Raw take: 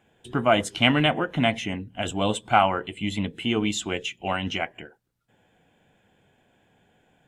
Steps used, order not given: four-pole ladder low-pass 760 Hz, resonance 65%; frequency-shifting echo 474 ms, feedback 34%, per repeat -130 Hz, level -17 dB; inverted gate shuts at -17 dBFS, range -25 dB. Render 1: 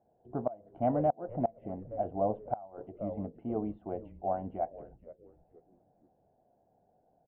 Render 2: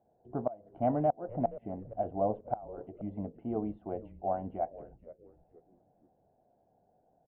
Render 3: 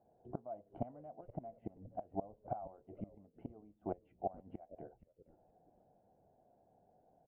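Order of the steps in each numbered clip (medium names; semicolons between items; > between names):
four-pole ladder low-pass > frequency-shifting echo > inverted gate; four-pole ladder low-pass > inverted gate > frequency-shifting echo; inverted gate > four-pole ladder low-pass > frequency-shifting echo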